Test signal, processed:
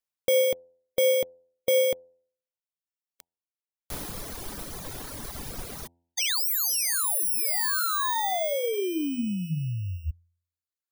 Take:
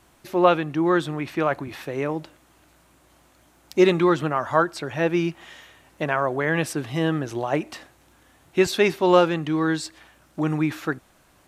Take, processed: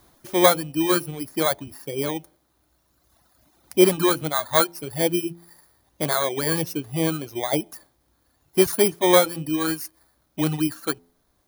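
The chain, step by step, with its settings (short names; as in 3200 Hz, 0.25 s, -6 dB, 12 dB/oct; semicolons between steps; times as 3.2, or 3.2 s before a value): FFT order left unsorted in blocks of 16 samples; de-hum 85.48 Hz, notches 11; reverb removal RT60 2 s; gain +1.5 dB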